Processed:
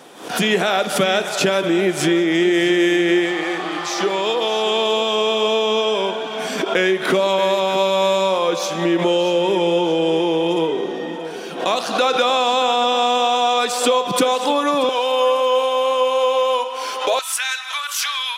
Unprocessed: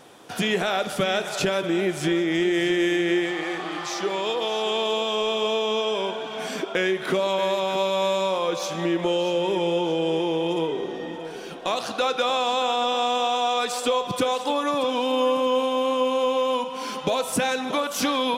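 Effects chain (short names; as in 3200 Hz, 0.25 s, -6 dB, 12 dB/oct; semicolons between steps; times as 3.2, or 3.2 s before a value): HPF 160 Hz 24 dB/oct, from 14.89 s 420 Hz, from 17.19 s 1300 Hz; backwards sustainer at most 100 dB/s; gain +6 dB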